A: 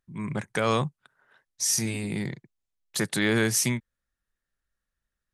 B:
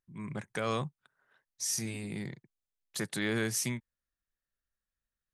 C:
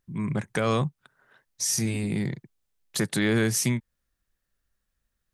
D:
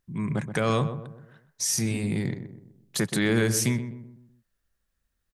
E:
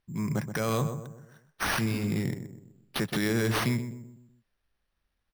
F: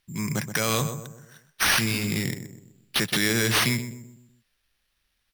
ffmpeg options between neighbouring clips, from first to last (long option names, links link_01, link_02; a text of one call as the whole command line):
ffmpeg -i in.wav -af "bandreject=frequency=900:width=26,volume=-8dB" out.wav
ffmpeg -i in.wav -filter_complex "[0:a]lowshelf=frequency=400:gain=5.5,asplit=2[link_01][link_02];[link_02]acompressor=threshold=-37dB:ratio=6,volume=-1dB[link_03];[link_01][link_03]amix=inputs=2:normalize=0,volume=3.5dB" out.wav
ffmpeg -i in.wav -filter_complex "[0:a]asplit=2[link_01][link_02];[link_02]adelay=126,lowpass=frequency=1100:poles=1,volume=-9dB,asplit=2[link_03][link_04];[link_04]adelay=126,lowpass=frequency=1100:poles=1,volume=0.46,asplit=2[link_05][link_06];[link_06]adelay=126,lowpass=frequency=1100:poles=1,volume=0.46,asplit=2[link_07][link_08];[link_08]adelay=126,lowpass=frequency=1100:poles=1,volume=0.46,asplit=2[link_09][link_10];[link_10]adelay=126,lowpass=frequency=1100:poles=1,volume=0.46[link_11];[link_01][link_03][link_05][link_07][link_09][link_11]amix=inputs=6:normalize=0" out.wav
ffmpeg -i in.wav -af "acrusher=samples=6:mix=1:aa=0.000001,alimiter=limit=-17dB:level=0:latency=1,volume=-1.5dB" out.wav
ffmpeg -i in.wav -filter_complex "[0:a]acrossover=split=1900[link_01][link_02];[link_02]aeval=exprs='0.178*sin(PI/2*2.51*val(0)/0.178)':channel_layout=same[link_03];[link_01][link_03]amix=inputs=2:normalize=0,volume=1dB" -ar 48000 -c:a aac -b:a 192k out.aac